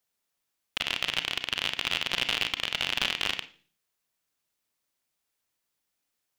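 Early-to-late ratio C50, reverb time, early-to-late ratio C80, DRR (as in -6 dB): 14.0 dB, 0.45 s, 20.0 dB, 9.0 dB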